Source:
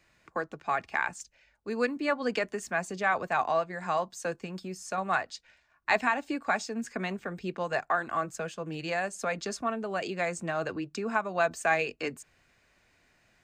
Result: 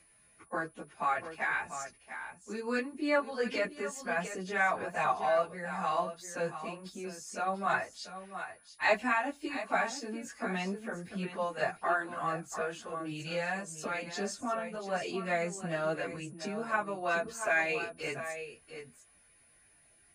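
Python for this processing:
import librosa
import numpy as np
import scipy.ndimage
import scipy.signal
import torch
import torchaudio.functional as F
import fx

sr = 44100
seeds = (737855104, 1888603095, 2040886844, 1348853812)

y = x + 10.0 ** (-10.5 / 20.0) * np.pad(x, (int(461 * sr / 1000.0), 0))[:len(x)]
y = fx.stretch_vocoder_free(y, sr, factor=1.5)
y = y + 10.0 ** (-63.0 / 20.0) * np.sin(2.0 * np.pi * 9800.0 * np.arange(len(y)) / sr)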